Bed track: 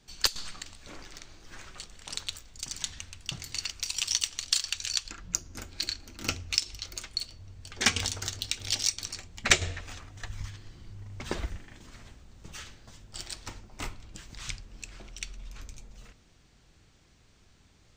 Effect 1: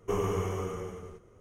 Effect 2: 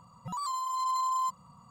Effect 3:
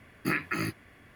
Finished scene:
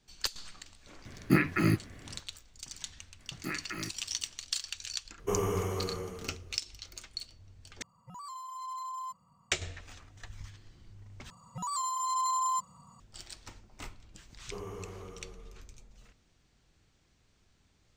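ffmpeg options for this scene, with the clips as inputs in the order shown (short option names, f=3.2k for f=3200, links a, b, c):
-filter_complex "[3:a]asplit=2[a][b];[1:a]asplit=2[c][d];[2:a]asplit=2[e][f];[0:a]volume=-7.5dB[g];[a]lowshelf=f=440:g=11[h];[c]highshelf=f=9.3k:g=10.5[i];[e]asuperstop=centerf=3700:order=4:qfactor=4.7[j];[f]equalizer=f=7.2k:w=2.1:g=9[k];[g]asplit=3[l][m][n];[l]atrim=end=7.824[o];[j]atrim=end=1.7,asetpts=PTS-STARTPTS,volume=-10dB[p];[m]atrim=start=9.516:end=11.304[q];[k]atrim=end=1.7,asetpts=PTS-STARTPTS,volume=-1dB[r];[n]atrim=start=12.996[s];[h]atrim=end=1.15,asetpts=PTS-STARTPTS,volume=-1dB,afade=t=in:d=0.004:c=hsin,afade=t=out:st=1.146:d=0.004:c=hsin,adelay=1050[t];[b]atrim=end=1.15,asetpts=PTS-STARTPTS,volume=-8.5dB,afade=t=in:d=0.004:c=hsin,afade=t=out:st=1.146:d=0.004:c=hsin,adelay=3190[u];[i]atrim=end=1.4,asetpts=PTS-STARTPTS,volume=-1dB,afade=t=in:d=0.004:c=hsin,afade=t=out:st=1.396:d=0.004:c=hsin,adelay=5190[v];[d]atrim=end=1.4,asetpts=PTS-STARTPTS,volume=-12.5dB,afade=t=in:d=0.004:c=hsin,afade=t=out:st=1.396:d=0.004:c=hsin,adelay=14430[w];[o][p]acrossfade=d=0.004:c1=hsin:c2=hsin[x];[x][q]acrossfade=d=0.004:c1=hsin:c2=hsin[y];[y][r]acrossfade=d=0.004:c1=hsin:c2=hsin[z];[z][s]acrossfade=d=0.004:c1=hsin:c2=hsin[aa];[aa][t][u][v][w]amix=inputs=5:normalize=0"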